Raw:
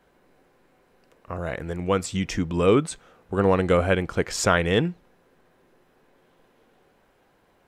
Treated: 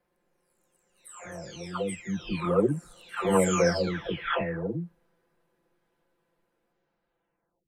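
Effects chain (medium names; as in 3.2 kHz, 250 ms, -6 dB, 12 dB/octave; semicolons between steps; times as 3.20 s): delay that grows with frequency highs early, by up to 951 ms; Doppler pass-by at 3.14 s, 7 m/s, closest 5.6 m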